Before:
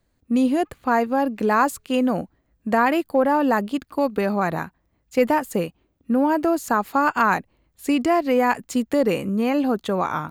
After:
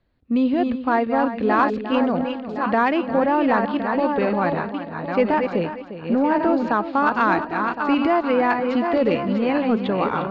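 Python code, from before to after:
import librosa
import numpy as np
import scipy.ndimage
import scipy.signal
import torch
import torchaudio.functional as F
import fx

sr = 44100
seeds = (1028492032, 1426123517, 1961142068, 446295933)

p1 = fx.reverse_delay_fb(x, sr, ms=532, feedback_pct=46, wet_db=-5.5)
p2 = scipy.signal.sosfilt(scipy.signal.butter(6, 4300.0, 'lowpass', fs=sr, output='sos'), p1)
p3 = 10.0 ** (-13.5 / 20.0) * np.tanh(p2 / 10.0 ** (-13.5 / 20.0))
p4 = p2 + (p3 * librosa.db_to_amplitude(-7.0))
p5 = p4 + 10.0 ** (-12.0 / 20.0) * np.pad(p4, (int(352 * sr / 1000.0), 0))[:len(p4)]
y = p5 * librosa.db_to_amplitude(-3.0)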